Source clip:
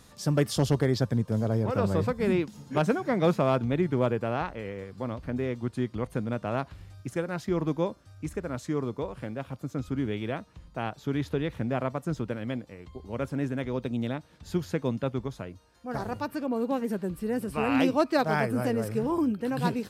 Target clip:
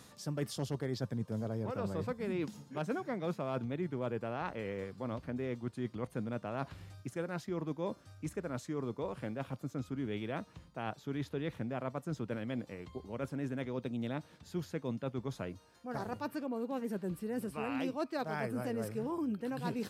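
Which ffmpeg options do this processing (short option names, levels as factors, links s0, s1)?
-af "highpass=100,areverse,acompressor=threshold=0.0178:ratio=4,areverse"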